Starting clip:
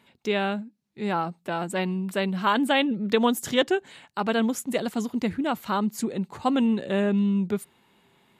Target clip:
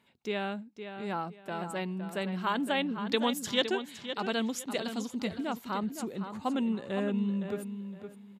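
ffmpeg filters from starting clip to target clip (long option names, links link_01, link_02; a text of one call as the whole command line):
ffmpeg -i in.wav -filter_complex "[0:a]asettb=1/sr,asplit=3[link_01][link_02][link_03];[link_01]atrim=end=2.964[link_04];[link_02]atrim=start=2.96:end=5.28,asetpts=PTS-STARTPTS,afade=type=in:duration=0.004:curve=qsin,afade=type=out:start_time=2.316:duration=0.004:curve=qsin,equalizer=frequency=4300:width=0.9:gain=8.5[link_05];[link_03]atrim=start=5.276[link_06];[link_04][link_05]acrossfade=duration=0.004:curve1=hsin:curve2=qsin[link_07];[link_07][link_06]acrossfade=duration=0.004:curve1=qsin:curve2=hsin,asplit=2[link_08][link_09];[link_09]adelay=513,lowpass=frequency=4700:poles=1,volume=-9dB,asplit=2[link_10][link_11];[link_11]adelay=513,lowpass=frequency=4700:poles=1,volume=0.26,asplit=2[link_12][link_13];[link_13]adelay=513,lowpass=frequency=4700:poles=1,volume=0.26[link_14];[link_08][link_10][link_12][link_14]amix=inputs=4:normalize=0,volume=-8dB" out.wav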